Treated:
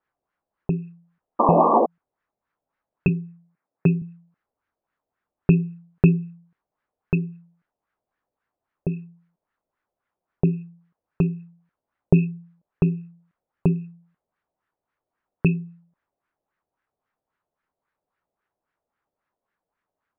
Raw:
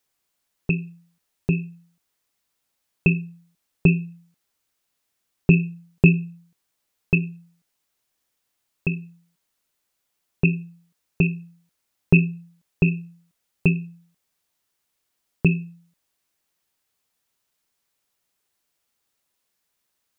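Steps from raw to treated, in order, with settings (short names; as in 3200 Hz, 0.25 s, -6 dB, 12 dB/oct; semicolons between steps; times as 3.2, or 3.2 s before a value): 1.39–1.86 painted sound noise 210–1200 Hz -19 dBFS; 3.08–4.02 elliptic band-pass 120–2300 Hz; LFO low-pass sine 3.7 Hz 600–1700 Hz; gain -1 dB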